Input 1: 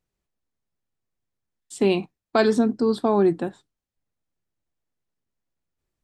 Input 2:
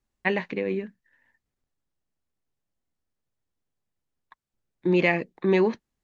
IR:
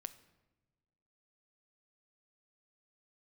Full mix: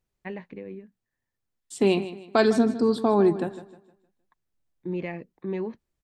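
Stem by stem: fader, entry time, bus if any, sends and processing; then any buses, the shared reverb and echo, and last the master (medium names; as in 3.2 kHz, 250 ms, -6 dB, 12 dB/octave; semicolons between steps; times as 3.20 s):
-1.0 dB, 0.00 s, no send, echo send -14 dB, none
-13.5 dB, 0.00 s, no send, no echo send, tilt EQ -2.5 dB/octave; auto duck -14 dB, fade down 1.15 s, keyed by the first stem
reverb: none
echo: feedback delay 155 ms, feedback 34%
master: none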